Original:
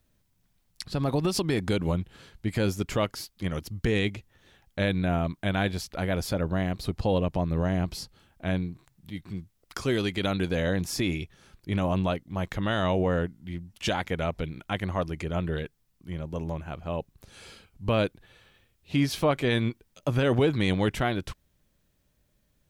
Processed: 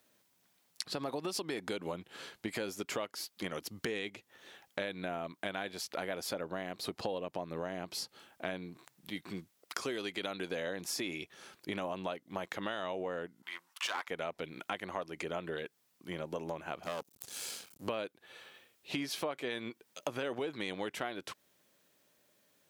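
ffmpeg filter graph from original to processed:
-filter_complex "[0:a]asettb=1/sr,asplit=3[s0][s1][s2];[s0]atrim=end=13.424[s3];[s1]atrim=start=13.42:end=14.08,asetpts=PTS-STARTPTS,afade=t=in:d=0.004:c=qsin,afade=t=out:st=0.656:d=0.004:c=qsin,agate=range=0.0224:threshold=0.00141:ratio=3:release=100:detection=peak,highpass=f=1100:t=q:w=4,aeval=exprs='clip(val(0),-1,0.0473)':c=same[s4];[s2]atrim=start=14.076[s5];[s3][s4]acrossfade=d=0.004:c1=hsin:c2=qsin[s6];[s6][s5]acrossfade=d=0.004:c1=qsin:c2=hsin,asettb=1/sr,asplit=3[s7][s8][s9];[s7]atrim=end=16.834[s10];[s8]atrim=start=16.83:end=17.88,asetpts=PTS-STARTPTS,afade=t=in:d=0.004:c=qsin,afade=t=out:st=1.046:d=0.004:c=qsin,acompressor=mode=upward:threshold=0.00316:ratio=2.5:attack=3.2:release=140:knee=2.83:detection=peak,aeval=exprs='max(val(0),0)':c=same,bass=f=250:g=7,treble=f=4000:g=13[s11];[s9]atrim=start=17.876[s12];[s10][s11]acrossfade=d=0.004:c1=hsin:c2=qsin[s13];[s13][s12]acrossfade=d=0.004:c1=qsin:c2=hsin,highpass=350,acompressor=threshold=0.01:ratio=6,volume=1.78"

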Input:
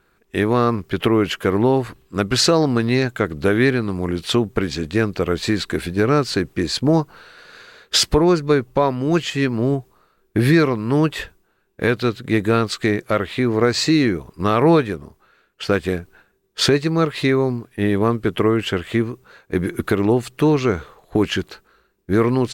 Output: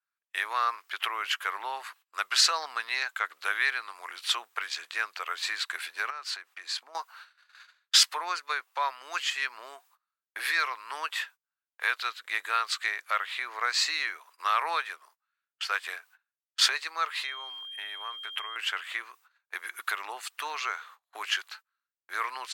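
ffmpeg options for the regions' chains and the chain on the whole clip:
-filter_complex "[0:a]asettb=1/sr,asplit=3[s0][s1][s2];[s0]atrim=end=6.104[s3];[s1]atrim=start=6.1:end=6.95,asetpts=PTS-STARTPTS,afade=t=in:d=0.004:c=qsin,afade=t=out:st=0.846:d=0.004:c=qsin,highshelf=f=5000:g=-6.5,acompressor=threshold=0.0631:ratio=8:attack=3.2:release=140:knee=1:detection=peak[s4];[s2]atrim=start=6.946[s5];[s3][s4]acrossfade=d=0.004:c1=hsin:c2=qsin[s6];[s6][s5]acrossfade=d=0.004:c1=qsin:c2=hsin,asettb=1/sr,asplit=3[s7][s8][s9];[s7]atrim=end=17.244[s10];[s8]atrim=start=17.24:end=18.56,asetpts=PTS-STARTPTS,afade=t=in:d=0.004:c=qsin,afade=t=out:st=1.316:d=0.004:c=qsin,bandreject=f=4600:w=7.1,acompressor=threshold=0.1:ratio=10:attack=3.2:release=140:knee=1:detection=peak,aeval=exprs='val(0)+0.0178*sin(2*PI*3200*n/s)':c=same[s11];[s9]atrim=start=18.556[s12];[s10][s11]acrossfade=d=0.004:c1=hsin:c2=qsin[s13];[s13][s12]acrossfade=d=0.004:c1=qsin:c2=hsin,agate=range=0.0631:threshold=0.00891:ratio=16:detection=peak,highpass=f=1000:w=0.5412,highpass=f=1000:w=1.3066,adynamicequalizer=threshold=0.0112:dfrequency=3900:dqfactor=0.7:tfrequency=3900:tqfactor=0.7:attack=5:release=100:ratio=0.375:range=1.5:mode=cutabove:tftype=highshelf,volume=0.708"

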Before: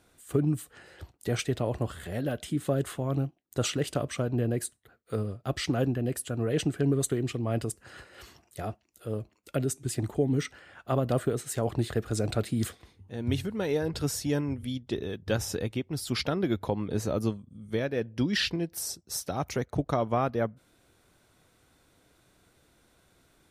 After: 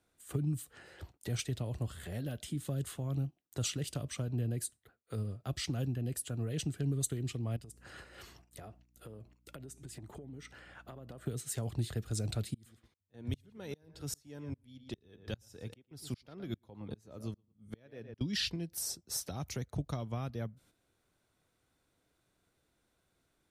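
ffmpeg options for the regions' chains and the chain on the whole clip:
-filter_complex "[0:a]asettb=1/sr,asplit=3[s0][s1][s2];[s0]atrim=end=7.564[s3];[s1]atrim=start=7.56:end=11.26,asetpts=PTS-STARTPTS,afade=t=in:d=0.004:c=qsin,afade=t=out:st=3.696:d=0.004:c=qsin,acompressor=threshold=0.01:ratio=16:attack=3.2:release=140:knee=1:detection=peak,aeval=exprs='val(0)+0.00126*(sin(2*PI*60*n/s)+sin(2*PI*2*60*n/s)/2+sin(2*PI*3*60*n/s)/3+sin(2*PI*4*60*n/s)/4+sin(2*PI*5*60*n/s)/5)':c=same[s4];[s2]atrim=start=11.256[s5];[s3][s4]acrossfade=d=0.004:c1=hsin:c2=qsin[s6];[s6][s5]acrossfade=d=0.004:c1=qsin:c2=hsin,asettb=1/sr,asplit=3[s7][s8][s9];[s7]atrim=end=12.544[s10];[s8]atrim=start=12.54:end=18.21,asetpts=PTS-STARTPTS,afade=t=in:d=0.004:c=qsin,afade=t=out:st=5.666:d=0.004:c=qsin,asplit=2[s11][s12];[s12]adelay=115,lowpass=f=3700:p=1,volume=0.224,asplit=2[s13][s14];[s14]adelay=115,lowpass=f=3700:p=1,volume=0.18[s15];[s11][s13][s15]amix=inputs=3:normalize=0,atrim=end_sample=250047,aeval=exprs='val(0)*pow(10,-33*if(lt(mod(-2.5*n/s,1),2*abs(-2.5)/1000),1-mod(-2.5*n/s,1)/(2*abs(-2.5)/1000),(mod(-2.5*n/s,1)-2*abs(-2.5)/1000)/(1-2*abs(-2.5)/1000))/20)':c=same[s16];[s9]atrim=start=18.206[s17];[s10][s16]acrossfade=d=0.004:c1=hsin:c2=qsin[s18];[s18][s17]acrossfade=d=0.004:c1=qsin:c2=hsin,agate=range=0.316:threshold=0.00158:ratio=16:detection=peak,acrossover=split=190|3000[s19][s20][s21];[s20]acompressor=threshold=0.00708:ratio=3[s22];[s19][s22][s21]amix=inputs=3:normalize=0,volume=0.708"

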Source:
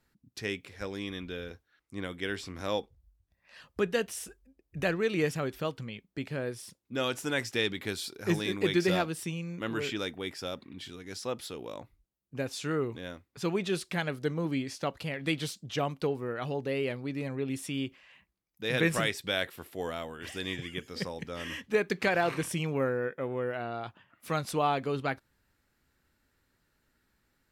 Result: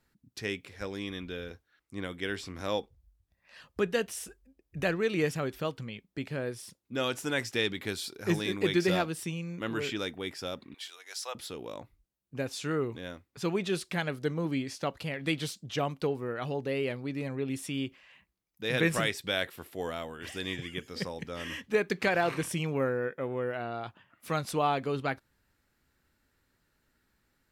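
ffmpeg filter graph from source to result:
-filter_complex "[0:a]asettb=1/sr,asplit=3[s0][s1][s2];[s0]atrim=end=10.744[s3];[s1]atrim=start=10.74:end=11.35,asetpts=PTS-STARTPTS,afade=t=in:d=0.004:c=qsin,afade=t=out:st=0.606:d=0.004:c=qsin,highpass=f=630:w=0.5412,highpass=f=630:w=1.3066,highshelf=f=4500:g=6[s4];[s2]atrim=start=11.346[s5];[s3][s4]acrossfade=d=0.004:c1=hsin:c2=qsin[s6];[s6][s5]acrossfade=d=0.004:c1=qsin:c2=hsin"

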